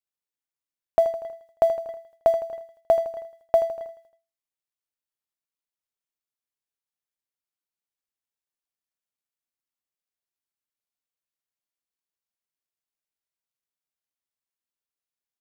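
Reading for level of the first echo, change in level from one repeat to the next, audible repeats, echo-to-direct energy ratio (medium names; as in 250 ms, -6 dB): -12.5 dB, -4.5 dB, 4, -11.0 dB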